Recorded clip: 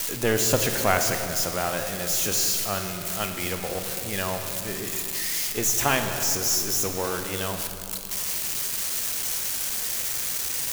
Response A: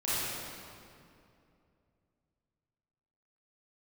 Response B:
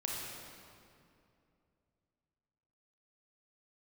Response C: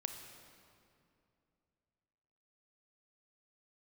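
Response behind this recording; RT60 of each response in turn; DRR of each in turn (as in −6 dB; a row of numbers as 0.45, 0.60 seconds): C; 2.6, 2.6, 2.6 seconds; −12.0, −3.0, 5.5 decibels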